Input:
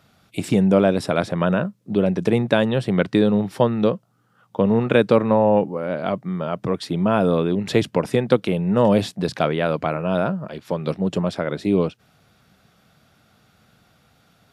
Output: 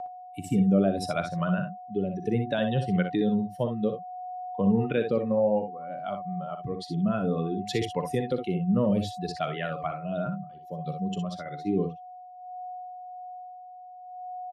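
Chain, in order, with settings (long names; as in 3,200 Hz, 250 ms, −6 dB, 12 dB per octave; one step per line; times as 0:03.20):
spectral dynamics exaggerated over time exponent 2
steady tone 730 Hz −30 dBFS
rotating-speaker cabinet horn 0.6 Hz
brickwall limiter −16.5 dBFS, peak gain reduction 10.5 dB
ambience of single reflections 41 ms −16.5 dB, 61 ms −8 dB, 72 ms −15 dB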